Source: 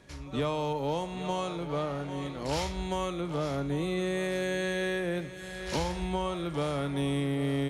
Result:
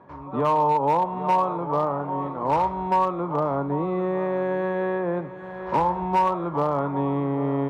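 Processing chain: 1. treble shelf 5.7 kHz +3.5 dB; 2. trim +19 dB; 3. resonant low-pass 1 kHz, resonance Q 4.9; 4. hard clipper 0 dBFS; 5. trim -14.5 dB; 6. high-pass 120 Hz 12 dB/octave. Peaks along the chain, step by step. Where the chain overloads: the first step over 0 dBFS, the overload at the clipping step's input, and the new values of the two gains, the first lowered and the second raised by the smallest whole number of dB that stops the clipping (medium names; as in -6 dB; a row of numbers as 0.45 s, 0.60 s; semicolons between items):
-20.5 dBFS, -2.0 dBFS, +5.5 dBFS, 0.0 dBFS, -14.5 dBFS, -12.0 dBFS; step 3, 5.5 dB; step 2 +13 dB, step 5 -8.5 dB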